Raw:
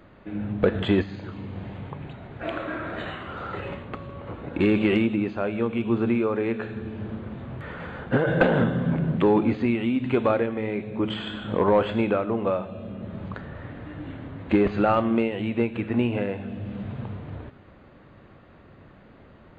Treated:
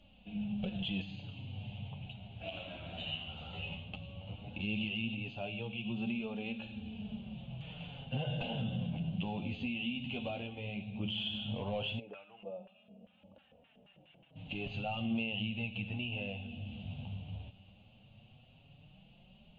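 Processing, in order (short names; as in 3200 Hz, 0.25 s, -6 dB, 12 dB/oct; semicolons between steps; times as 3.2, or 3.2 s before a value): EQ curve 200 Hz 0 dB, 350 Hz -18 dB, 770 Hz -2 dB, 1100 Hz -18 dB, 1900 Hz -20 dB, 2800 Hz +14 dB, 4400 Hz -2 dB; limiter -21.5 dBFS, peak gain reduction 11 dB; 11.98–14.35 LFO band-pass square 1.4 Hz -> 6.7 Hz 470–1600 Hz; flange 0.15 Hz, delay 3.4 ms, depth 9.6 ms, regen -4%; gain -4 dB; AAC 64 kbps 16000 Hz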